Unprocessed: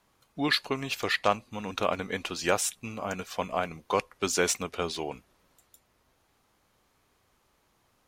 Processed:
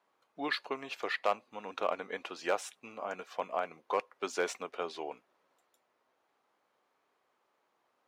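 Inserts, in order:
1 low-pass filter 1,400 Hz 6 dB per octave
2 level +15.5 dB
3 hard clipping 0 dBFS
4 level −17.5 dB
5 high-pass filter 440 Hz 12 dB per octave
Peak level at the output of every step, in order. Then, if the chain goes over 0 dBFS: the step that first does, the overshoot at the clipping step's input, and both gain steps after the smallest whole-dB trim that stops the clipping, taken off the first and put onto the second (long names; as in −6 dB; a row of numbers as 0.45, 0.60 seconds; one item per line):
−11.0, +4.5, 0.0, −17.5, −14.0 dBFS
step 2, 4.5 dB
step 2 +10.5 dB, step 4 −12.5 dB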